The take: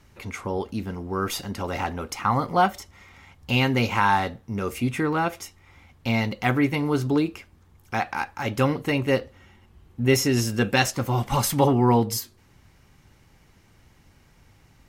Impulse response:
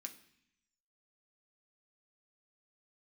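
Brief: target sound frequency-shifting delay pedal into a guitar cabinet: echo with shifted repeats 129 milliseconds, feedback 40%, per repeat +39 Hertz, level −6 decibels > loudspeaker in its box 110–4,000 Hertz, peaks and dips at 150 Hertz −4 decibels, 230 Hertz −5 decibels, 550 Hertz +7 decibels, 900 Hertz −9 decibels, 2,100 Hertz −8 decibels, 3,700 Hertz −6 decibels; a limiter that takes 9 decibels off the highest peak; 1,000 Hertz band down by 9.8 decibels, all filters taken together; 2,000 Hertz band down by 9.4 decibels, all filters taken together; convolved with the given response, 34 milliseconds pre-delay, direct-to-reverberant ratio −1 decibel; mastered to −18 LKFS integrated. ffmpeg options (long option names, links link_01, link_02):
-filter_complex "[0:a]equalizer=frequency=1000:width_type=o:gain=-7.5,equalizer=frequency=2000:width_type=o:gain=-6,alimiter=limit=-18.5dB:level=0:latency=1,asplit=2[link_01][link_02];[1:a]atrim=start_sample=2205,adelay=34[link_03];[link_02][link_03]afir=irnorm=-1:irlink=0,volume=6dB[link_04];[link_01][link_04]amix=inputs=2:normalize=0,asplit=6[link_05][link_06][link_07][link_08][link_09][link_10];[link_06]adelay=129,afreqshift=39,volume=-6dB[link_11];[link_07]adelay=258,afreqshift=78,volume=-14dB[link_12];[link_08]adelay=387,afreqshift=117,volume=-21.9dB[link_13];[link_09]adelay=516,afreqshift=156,volume=-29.9dB[link_14];[link_10]adelay=645,afreqshift=195,volume=-37.8dB[link_15];[link_05][link_11][link_12][link_13][link_14][link_15]amix=inputs=6:normalize=0,highpass=110,equalizer=frequency=150:width_type=q:width=4:gain=-4,equalizer=frequency=230:width_type=q:width=4:gain=-5,equalizer=frequency=550:width_type=q:width=4:gain=7,equalizer=frequency=900:width_type=q:width=4:gain=-9,equalizer=frequency=2100:width_type=q:width=4:gain=-8,equalizer=frequency=3700:width_type=q:width=4:gain=-6,lowpass=frequency=4000:width=0.5412,lowpass=frequency=4000:width=1.3066,volume=9dB"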